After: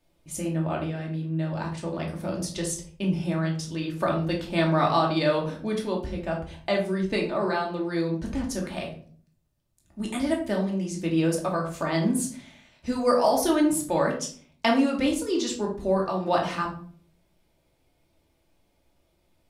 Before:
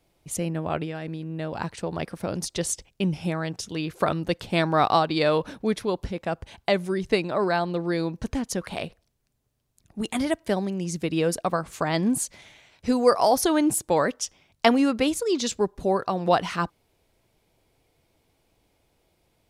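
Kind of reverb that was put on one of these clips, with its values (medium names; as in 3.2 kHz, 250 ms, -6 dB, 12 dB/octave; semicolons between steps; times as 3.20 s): simulated room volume 460 m³, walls furnished, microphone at 2.6 m; trim -6 dB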